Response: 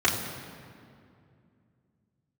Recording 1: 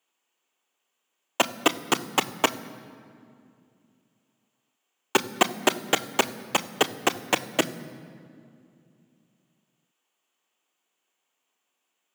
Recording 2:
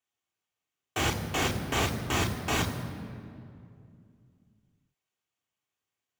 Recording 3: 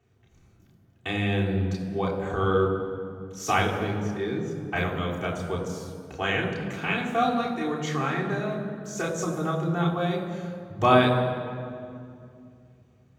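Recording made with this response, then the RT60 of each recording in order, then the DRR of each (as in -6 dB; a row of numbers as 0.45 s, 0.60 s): 3; 2.5 s, 2.4 s, 2.4 s; 10.0 dB, 1.0 dB, -6.5 dB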